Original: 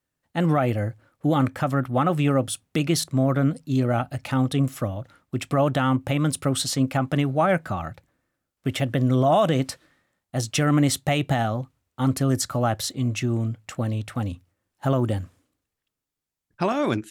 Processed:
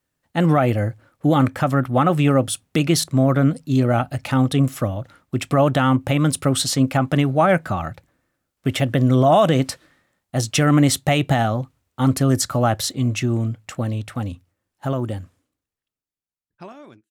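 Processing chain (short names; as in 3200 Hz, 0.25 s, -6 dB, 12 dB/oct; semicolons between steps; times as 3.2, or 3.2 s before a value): ending faded out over 4.26 s; gain +4.5 dB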